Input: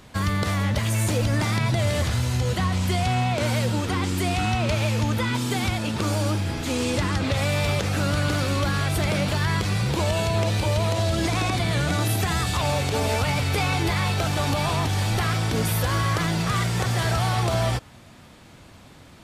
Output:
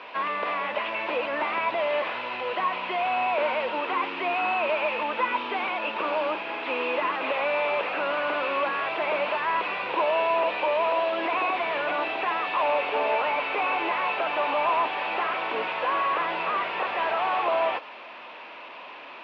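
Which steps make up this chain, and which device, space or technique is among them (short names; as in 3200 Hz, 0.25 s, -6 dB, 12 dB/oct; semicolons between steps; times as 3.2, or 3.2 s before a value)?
digital answering machine (BPF 370–3300 Hz; delta modulation 32 kbps, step -39.5 dBFS; speaker cabinet 350–3400 Hz, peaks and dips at 600 Hz +4 dB, 1000 Hz +9 dB, 2600 Hz +10 dB)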